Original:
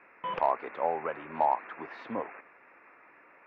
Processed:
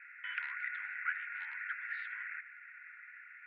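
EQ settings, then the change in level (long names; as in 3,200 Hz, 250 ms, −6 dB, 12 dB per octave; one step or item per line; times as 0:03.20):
Chebyshev high-pass with heavy ripple 1,400 Hz, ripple 6 dB
low-pass filter 2,400 Hz 12 dB per octave
high-frequency loss of the air 250 metres
+14.0 dB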